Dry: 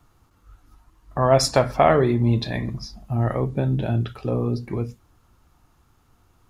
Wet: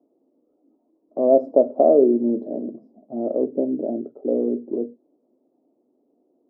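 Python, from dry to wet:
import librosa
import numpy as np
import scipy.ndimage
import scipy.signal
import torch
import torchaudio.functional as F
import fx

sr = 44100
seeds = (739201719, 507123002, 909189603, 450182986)

y = scipy.signal.sosfilt(scipy.signal.ellip(3, 1.0, 60, [250.0, 620.0], 'bandpass', fs=sr, output='sos'), x)
y = y * 10.0 ** (5.5 / 20.0)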